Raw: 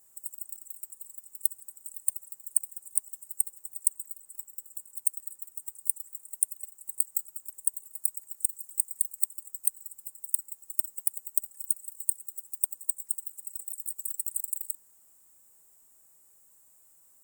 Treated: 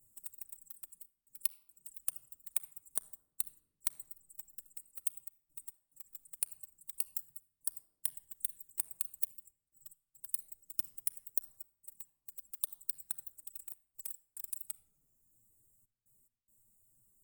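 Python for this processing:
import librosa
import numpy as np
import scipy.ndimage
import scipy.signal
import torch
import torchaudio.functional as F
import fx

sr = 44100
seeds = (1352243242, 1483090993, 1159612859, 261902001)

y = fx.curve_eq(x, sr, hz=(130.0, 950.0, 5000.0, 10000.0), db=(0, -26, -26, -16))
y = fx.dereverb_blind(y, sr, rt60_s=1.2)
y = fx.step_gate(y, sr, bpm=71, pattern='xxxxx.x.xx', floor_db=-60.0, edge_ms=4.5)
y = fx.env_flanger(y, sr, rest_ms=10.1, full_db=-44.5)
y = fx.room_shoebox(y, sr, seeds[0], volume_m3=3000.0, walls='furnished', distance_m=0.54)
y = y * 10.0 ** (13.0 / 20.0)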